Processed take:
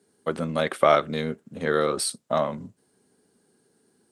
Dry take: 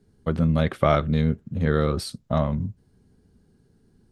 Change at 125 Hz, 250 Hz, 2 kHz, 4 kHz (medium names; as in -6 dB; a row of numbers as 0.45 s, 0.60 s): -13.0 dB, -7.0 dB, +3.0 dB, +3.5 dB